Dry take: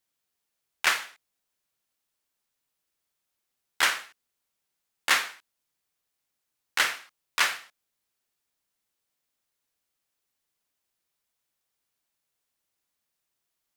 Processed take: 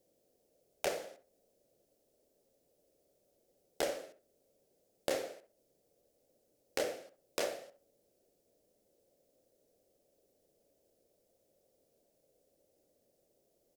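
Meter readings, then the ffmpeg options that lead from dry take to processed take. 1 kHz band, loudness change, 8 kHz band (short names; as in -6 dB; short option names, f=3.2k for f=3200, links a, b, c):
-13.5 dB, -13.0 dB, -12.5 dB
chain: -filter_complex "[0:a]firequalizer=gain_entry='entry(110,0);entry(550,15);entry(990,-19);entry(3600,-15);entry(5200,-10)':delay=0.05:min_phase=1,acompressor=threshold=-50dB:ratio=3,asplit=2[a][b];[b]adelay=66,lowpass=f=1.3k:p=1,volume=-9dB,asplit=2[c][d];[d]adelay=66,lowpass=f=1.3k:p=1,volume=0.3,asplit=2[e][f];[f]adelay=66,lowpass=f=1.3k:p=1,volume=0.3[g];[c][e][g]amix=inputs=3:normalize=0[h];[a][h]amix=inputs=2:normalize=0,volume=12dB"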